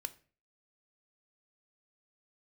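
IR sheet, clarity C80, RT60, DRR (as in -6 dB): 23.5 dB, 0.40 s, 11.0 dB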